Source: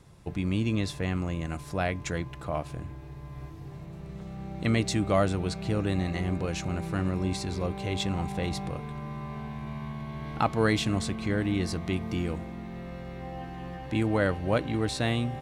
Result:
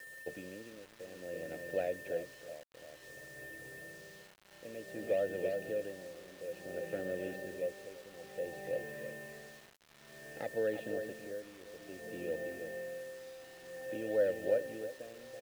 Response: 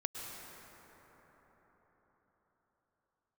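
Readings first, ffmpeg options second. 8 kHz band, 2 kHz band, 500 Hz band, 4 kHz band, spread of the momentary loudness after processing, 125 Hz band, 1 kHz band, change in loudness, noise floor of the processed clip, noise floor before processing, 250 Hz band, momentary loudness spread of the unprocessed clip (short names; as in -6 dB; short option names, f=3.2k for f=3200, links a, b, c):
-13.0 dB, -9.0 dB, -3.5 dB, -18.0 dB, 17 LU, -26.0 dB, -18.0 dB, -9.5 dB, -59 dBFS, -43 dBFS, -18.0 dB, 14 LU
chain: -filter_complex "[0:a]lowpass=f=5.9k:w=0.5412,lowpass=f=5.9k:w=1.3066,bandreject=f=2k:w=5.5,asplit=2[a][b];[b]adelay=329,lowpass=f=1.4k:p=1,volume=-9dB,asplit=2[c][d];[d]adelay=329,lowpass=f=1.4k:p=1,volume=0.18,asplit=2[e][f];[f]adelay=329,lowpass=f=1.4k:p=1,volume=0.18[g];[a][c][e][g]amix=inputs=4:normalize=0,acrossover=split=180|1200[h][i][j];[h]acompressor=threshold=-35dB:ratio=4[k];[i]acompressor=threshold=-30dB:ratio=4[l];[j]acompressor=threshold=-49dB:ratio=4[m];[k][l][m]amix=inputs=3:normalize=0,aeval=exprs='val(0)+0.00398*sin(2*PI*1800*n/s)':c=same,asplit=2[n][o];[o]acrusher=samples=12:mix=1:aa=0.000001:lfo=1:lforange=7.2:lforate=2.8,volume=-4.5dB[p];[n][p]amix=inputs=2:normalize=0,tremolo=f=0.56:d=0.82,asplit=3[q][r][s];[q]bandpass=f=530:t=q:w=8,volume=0dB[t];[r]bandpass=f=1.84k:t=q:w=8,volume=-6dB[u];[s]bandpass=f=2.48k:t=q:w=8,volume=-9dB[v];[t][u][v]amix=inputs=3:normalize=0,acrusher=bits=9:mix=0:aa=0.000001,volume=5dB"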